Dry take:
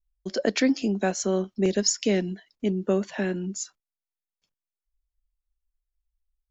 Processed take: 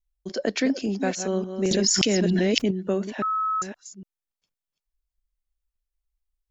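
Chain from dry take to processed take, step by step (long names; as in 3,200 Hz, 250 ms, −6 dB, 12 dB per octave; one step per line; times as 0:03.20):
delay that plays each chunk backwards 288 ms, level −8.5 dB
0:01.71–0:02.71: envelope flattener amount 100%
0:03.22–0:03.62: beep over 1,290 Hz −20.5 dBFS
level −1.5 dB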